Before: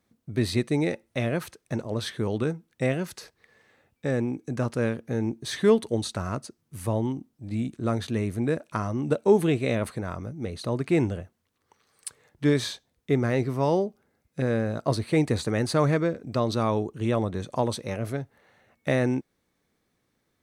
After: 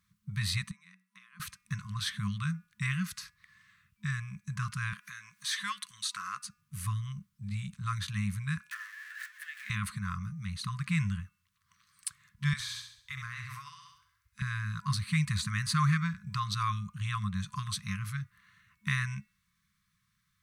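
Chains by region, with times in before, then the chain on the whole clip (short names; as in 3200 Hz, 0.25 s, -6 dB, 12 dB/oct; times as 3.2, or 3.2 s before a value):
0.71–1.4 compressor 5:1, threshold -37 dBFS + rippled Chebyshev high-pass 180 Hz, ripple 9 dB
4.93–6.45 HPF 710 Hz + upward compressor, threshold -34 dBFS
8.71–9.7 zero-crossing step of -25.5 dBFS + compressor 10:1, threshold -25 dBFS + ladder high-pass 1700 Hz, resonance 90%
12.53–14.42 Chebyshev band-stop 110–650 Hz, order 4 + flutter echo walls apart 11.5 m, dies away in 0.6 s + compressor, threshold -34 dBFS
whole clip: de-hum 242.3 Hz, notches 11; FFT band-reject 210–1000 Hz; dynamic EQ 120 Hz, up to -6 dB, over -45 dBFS, Q 5.3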